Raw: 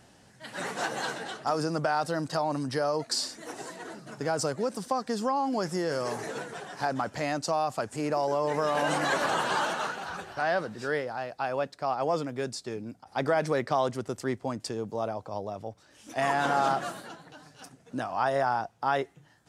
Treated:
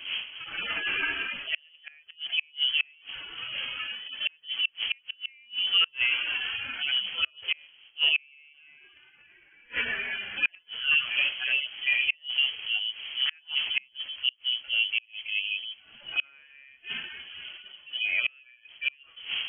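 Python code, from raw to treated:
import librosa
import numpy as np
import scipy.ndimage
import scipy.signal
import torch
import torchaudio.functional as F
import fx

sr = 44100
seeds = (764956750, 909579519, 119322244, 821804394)

y = fx.hpss_only(x, sr, part='harmonic')
y = fx.dmg_wind(y, sr, seeds[0], corner_hz=530.0, level_db=-44.0)
y = fx.gate_flip(y, sr, shuts_db=-22.0, range_db=-35)
y = fx.freq_invert(y, sr, carrier_hz=3200)
y = F.gain(torch.from_numpy(y), 8.0).numpy()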